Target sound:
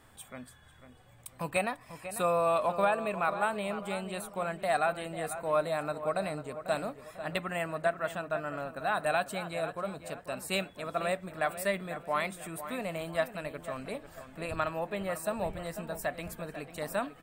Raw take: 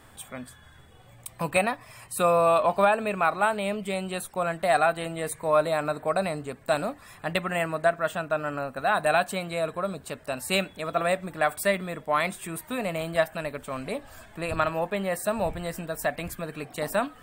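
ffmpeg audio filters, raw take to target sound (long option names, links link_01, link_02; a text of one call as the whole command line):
ffmpeg -i in.wav -filter_complex "[0:a]asplit=2[link_01][link_02];[link_02]adelay=495,lowpass=frequency=2500:poles=1,volume=-11dB,asplit=2[link_03][link_04];[link_04]adelay=495,lowpass=frequency=2500:poles=1,volume=0.4,asplit=2[link_05][link_06];[link_06]adelay=495,lowpass=frequency=2500:poles=1,volume=0.4,asplit=2[link_07][link_08];[link_08]adelay=495,lowpass=frequency=2500:poles=1,volume=0.4[link_09];[link_01][link_03][link_05][link_07][link_09]amix=inputs=5:normalize=0,volume=-6.5dB" out.wav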